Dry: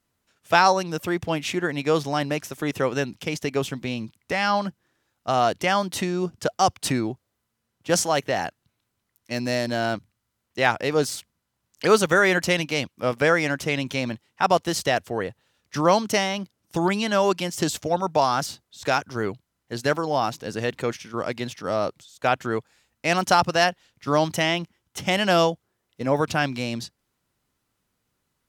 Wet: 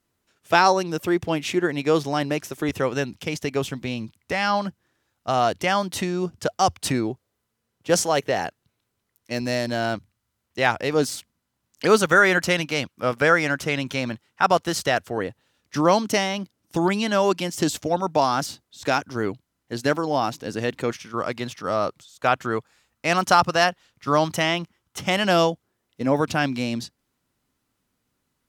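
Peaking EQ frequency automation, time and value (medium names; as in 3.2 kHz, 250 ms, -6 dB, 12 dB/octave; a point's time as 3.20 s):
peaking EQ +5 dB 0.49 oct
360 Hz
from 2.69 s 83 Hz
from 6.94 s 440 Hz
from 9.41 s 79 Hz
from 10.93 s 260 Hz
from 12.00 s 1.4 kHz
from 15.17 s 280 Hz
from 20.90 s 1.2 kHz
from 25.24 s 260 Hz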